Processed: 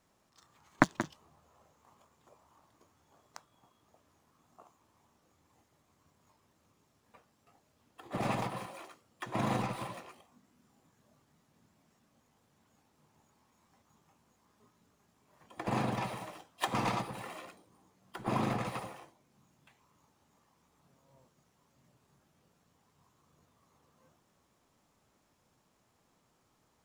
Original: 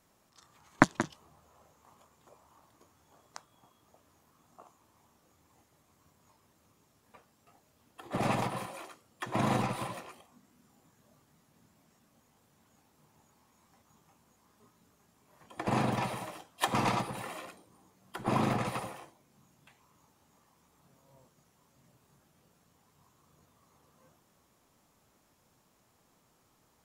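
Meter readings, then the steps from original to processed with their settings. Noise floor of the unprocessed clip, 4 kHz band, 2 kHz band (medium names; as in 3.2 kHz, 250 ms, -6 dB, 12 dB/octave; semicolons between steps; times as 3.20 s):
-70 dBFS, -3.5 dB, -3.0 dB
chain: median filter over 3 samples; trim -3 dB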